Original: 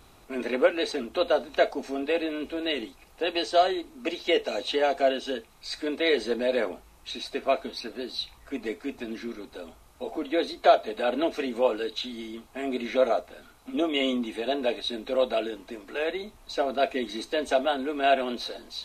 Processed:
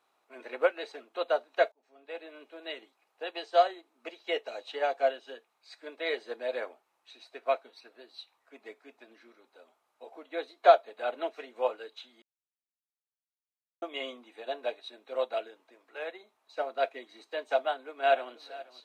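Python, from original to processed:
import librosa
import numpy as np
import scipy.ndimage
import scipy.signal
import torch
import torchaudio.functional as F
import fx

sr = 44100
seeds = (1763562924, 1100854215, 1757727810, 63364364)

y = fx.echo_throw(x, sr, start_s=17.57, length_s=0.75, ms=480, feedback_pct=25, wet_db=-13.0)
y = fx.edit(y, sr, fx.fade_in_span(start_s=1.72, length_s=0.66),
    fx.silence(start_s=12.22, length_s=1.6), tone=tone)
y = scipy.signal.sosfilt(scipy.signal.butter(2, 650.0, 'highpass', fs=sr, output='sos'), y)
y = fx.high_shelf(y, sr, hz=2600.0, db=-11.0)
y = fx.upward_expand(y, sr, threshold_db=-48.0, expansion=1.5)
y = y * librosa.db_to_amplitude(4.0)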